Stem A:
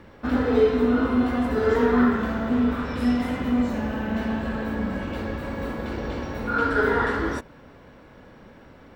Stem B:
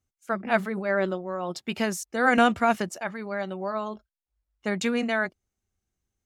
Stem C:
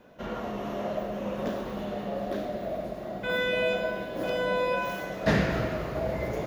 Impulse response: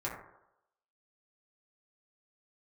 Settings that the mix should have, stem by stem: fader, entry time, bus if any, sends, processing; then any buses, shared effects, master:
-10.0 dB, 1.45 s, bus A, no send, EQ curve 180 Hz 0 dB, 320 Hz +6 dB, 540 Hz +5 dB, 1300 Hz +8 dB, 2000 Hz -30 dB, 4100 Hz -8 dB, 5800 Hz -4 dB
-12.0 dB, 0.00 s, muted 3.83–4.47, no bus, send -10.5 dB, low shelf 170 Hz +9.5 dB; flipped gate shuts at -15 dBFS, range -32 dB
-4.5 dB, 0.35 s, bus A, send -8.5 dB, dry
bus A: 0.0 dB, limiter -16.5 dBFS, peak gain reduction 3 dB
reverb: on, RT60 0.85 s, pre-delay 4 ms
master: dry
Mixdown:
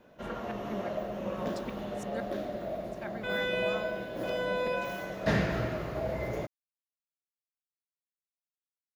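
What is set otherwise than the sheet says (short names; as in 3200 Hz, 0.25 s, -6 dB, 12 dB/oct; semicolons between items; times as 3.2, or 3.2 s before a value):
stem A: muted; stem C: entry 0.35 s -> 0.00 s; reverb return -7.0 dB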